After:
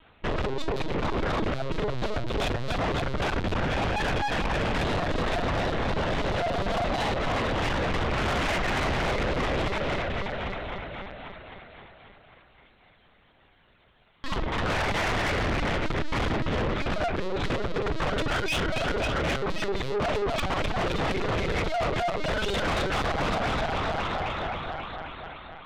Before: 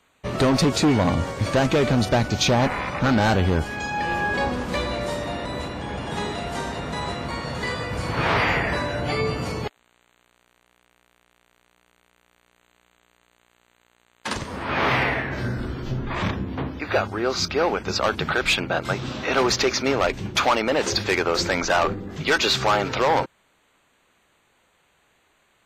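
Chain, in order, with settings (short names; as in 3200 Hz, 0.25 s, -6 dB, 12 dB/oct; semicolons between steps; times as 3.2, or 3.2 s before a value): minimum comb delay 2.8 ms; low shelf 62 Hz +7 dB; notch 870 Hz, Q 20; thinning echo 0.266 s, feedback 69%, high-pass 190 Hz, level -4 dB; in parallel at +3 dB: vocal rider within 5 dB 2 s; on the sum: reverb removal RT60 0.68 s; on a send at -5 dB: bell 480 Hz +9 dB 1.7 oct + reverb RT60 0.30 s, pre-delay 23 ms; on the sum: LPC vocoder at 8 kHz pitch kept; limiter -8.5 dBFS, peak gain reduction 13 dB; soft clip -22.5 dBFS, distortion -7 dB; gain -1.5 dB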